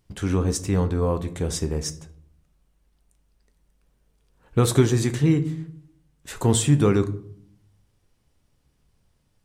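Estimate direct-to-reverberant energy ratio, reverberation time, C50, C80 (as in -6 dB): 9.5 dB, 0.65 s, 15.5 dB, 19.0 dB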